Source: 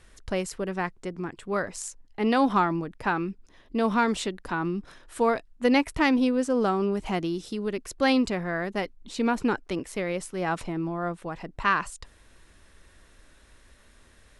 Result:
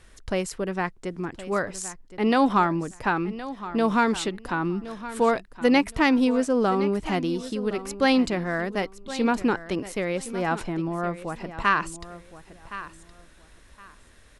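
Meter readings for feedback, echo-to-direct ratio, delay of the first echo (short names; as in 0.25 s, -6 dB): 22%, -14.5 dB, 1.067 s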